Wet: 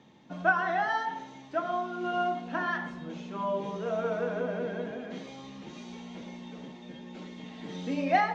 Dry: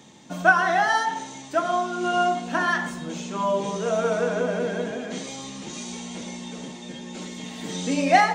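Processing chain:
high-frequency loss of the air 220 metres
level −6.5 dB

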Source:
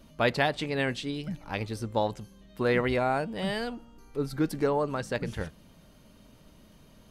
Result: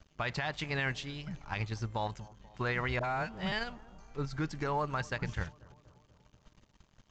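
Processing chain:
graphic EQ with 10 bands 250 Hz −10 dB, 500 Hz −11 dB, 4,000 Hz −5 dB
in parallel at −3 dB: output level in coarse steps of 19 dB
on the sum: brickwall limiter −22.5 dBFS, peak gain reduction 10.5 dB
0:02.99–0:03.52: all-pass dispersion highs, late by 48 ms, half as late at 730 Hz
dead-zone distortion −56.5 dBFS
on a send: bucket-brigade delay 242 ms, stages 2,048, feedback 62%, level −21.5 dB
on the sum: downsampling to 16,000 Hz

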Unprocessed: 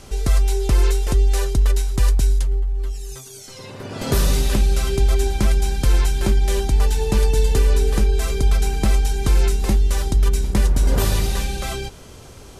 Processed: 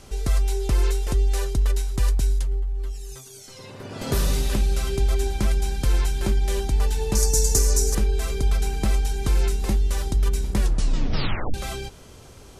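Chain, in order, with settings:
0:07.15–0:07.95: high shelf with overshoot 4,500 Hz +11.5 dB, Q 3
0:10.59: tape stop 0.95 s
level −4.5 dB

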